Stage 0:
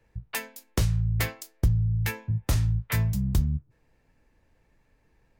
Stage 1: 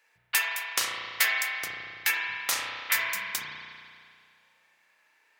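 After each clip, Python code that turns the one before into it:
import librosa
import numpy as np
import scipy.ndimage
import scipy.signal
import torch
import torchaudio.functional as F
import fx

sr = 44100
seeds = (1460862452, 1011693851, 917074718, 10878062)

y = scipy.signal.sosfilt(scipy.signal.butter(2, 1400.0, 'highpass', fs=sr, output='sos'), x)
y = fx.rev_spring(y, sr, rt60_s=2.2, pass_ms=(33,), chirp_ms=55, drr_db=-2.0)
y = y * librosa.db_to_amplitude(7.5)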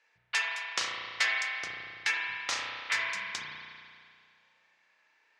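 y = scipy.signal.sosfilt(scipy.signal.butter(4, 6400.0, 'lowpass', fs=sr, output='sos'), x)
y = y * librosa.db_to_amplitude(-2.5)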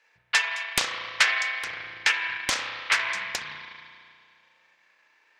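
y = fx.rev_spring(x, sr, rt60_s=1.3, pass_ms=(31, 54), chirp_ms=45, drr_db=10.0)
y = fx.transient(y, sr, attack_db=4, sustain_db=-5)
y = fx.doppler_dist(y, sr, depth_ms=0.74)
y = y * librosa.db_to_amplitude(5.0)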